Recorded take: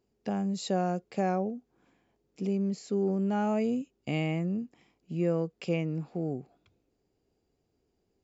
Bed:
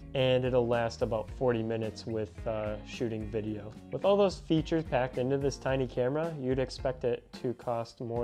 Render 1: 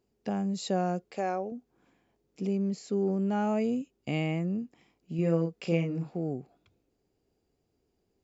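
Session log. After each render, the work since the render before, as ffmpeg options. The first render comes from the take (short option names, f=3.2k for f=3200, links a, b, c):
-filter_complex "[0:a]asettb=1/sr,asplit=3[a][b][c];[a]atrim=end=1.114[d];[b]atrim=start=1.11:end=1.52,asetpts=PTS-STARTPTS,afade=t=in:d=0.004:c=qsin,afade=t=out:st=0.406:d=0.004:c=qsin,equalizer=f=150:w=1.1:g=-14[e];[c]atrim=start=1.516[f];[d][e]acrossfade=d=0.004:c1=hsin:c2=qsin[g];[g][f]acrossfade=d=0.004:c1=qsin:c2=hsin,asettb=1/sr,asplit=3[h][i][j];[h]atrim=end=5.154[k];[i]atrim=start=5.15:end=6.11,asetpts=PTS-STARTPTS,afade=t=in:d=0.004:c=qsin,afade=t=out:st=0.956:d=0.004:c=qsin,asplit=2[l][m];[m]adelay=36,volume=-4.5dB[n];[l][n]amix=inputs=2:normalize=0,atrim=end_sample=42336[o];[j]atrim=start=6.106[p];[k][o]acrossfade=d=0.004:c1=hsin:c2=qsin[q];[q][p]acrossfade=d=0.004:c1=qsin:c2=hsin"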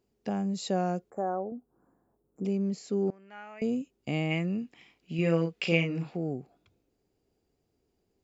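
-filter_complex "[0:a]asettb=1/sr,asplit=3[a][b][c];[a]atrim=end=1.104[d];[b]atrim=start=1.1:end=2.45,asetpts=PTS-STARTPTS,afade=t=in:d=0.004:c=qsin,afade=t=out:st=1.346:d=0.004:c=qsin,asuperstop=centerf=3600:order=8:qfactor=0.51[e];[c]atrim=start=2.446[f];[d][e]acrossfade=d=0.004:c1=hsin:c2=qsin[g];[g][f]acrossfade=d=0.004:c1=qsin:c2=hsin,asettb=1/sr,asplit=3[h][i][j];[h]atrim=end=3.104[k];[i]atrim=start=3.1:end=3.62,asetpts=PTS-STARTPTS,afade=t=in:d=0.004:c=qsin,afade=t=out:st=0.516:d=0.004:c=qsin,bandpass=f=2k:t=q:w=2.6[l];[j]atrim=start=3.616[m];[k][l]acrossfade=d=0.004:c1=hsin:c2=qsin[n];[n][m]acrossfade=d=0.004:c1=qsin:c2=hsin,asplit=3[o][p][q];[o]afade=t=out:st=4.3:d=0.02[r];[p]equalizer=f=2.7k:w=0.72:g=12,afade=t=in:st=4.3:d=0.02,afade=t=out:st=6.15:d=0.02[s];[q]afade=t=in:st=6.15:d=0.02[t];[r][s][t]amix=inputs=3:normalize=0"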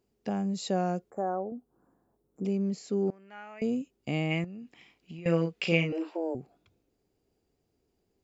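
-filter_complex "[0:a]asettb=1/sr,asplit=3[a][b][c];[a]atrim=end=4.444[d];[b]atrim=start=4.44:end=5.26,asetpts=PTS-STARTPTS,afade=t=in:d=0.004:c=qsin,afade=t=out:st=0.816:d=0.004:c=qsin,acompressor=threshold=-39dB:ratio=12:attack=3.2:release=140:knee=1:detection=peak[e];[c]atrim=start=5.256[f];[d][e]acrossfade=d=0.004:c1=hsin:c2=qsin[g];[g][f]acrossfade=d=0.004:c1=qsin:c2=hsin,asettb=1/sr,asplit=3[h][i][j];[h]atrim=end=5.924[k];[i]atrim=start=5.92:end=6.35,asetpts=PTS-STARTPTS,afade=t=in:d=0.004:c=qsin,afade=t=out:st=0.426:d=0.004:c=qsin,afreqshift=160[l];[j]atrim=start=6.346[m];[k][l]acrossfade=d=0.004:c1=hsin:c2=qsin[n];[n][m]acrossfade=d=0.004:c1=qsin:c2=hsin"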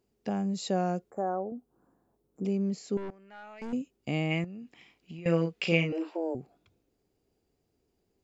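-filter_complex "[0:a]asettb=1/sr,asplit=3[a][b][c];[a]atrim=end=2.974[d];[b]atrim=start=2.97:end=3.73,asetpts=PTS-STARTPTS,afade=t=in:d=0.004:c=qsin,afade=t=out:st=0.756:d=0.004:c=qsin,aeval=exprs='(tanh(63.1*val(0)+0.3)-tanh(0.3))/63.1':c=same[e];[c]atrim=start=3.726[f];[d][e]acrossfade=d=0.004:c1=hsin:c2=qsin[g];[g][f]acrossfade=d=0.004:c1=qsin:c2=hsin"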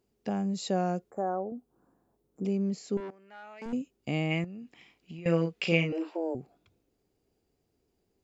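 -filter_complex "[0:a]asettb=1/sr,asplit=3[a][b][c];[a]atrim=end=3.004[d];[b]atrim=start=3:end=3.66,asetpts=PTS-STARTPTS,afade=t=in:d=0.004:c=qsin,afade=t=out:st=0.656:d=0.004:c=qsin,highpass=220[e];[c]atrim=start=3.656[f];[d][e]acrossfade=d=0.004:c1=hsin:c2=qsin[g];[g][f]acrossfade=d=0.004:c1=qsin:c2=hsin"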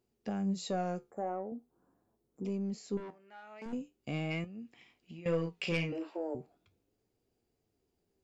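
-af "asoftclip=type=tanh:threshold=-19dB,flanger=delay=8.2:depth=5.9:regen=66:speed=0.41:shape=sinusoidal"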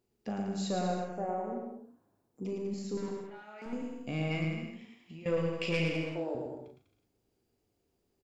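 -filter_complex "[0:a]asplit=2[a][b];[b]adelay=38,volume=-8dB[c];[a][c]amix=inputs=2:normalize=0,aecho=1:1:110|198|268.4|324.7|369.8:0.631|0.398|0.251|0.158|0.1"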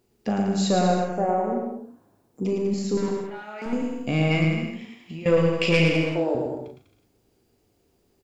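-af "volume=11.5dB"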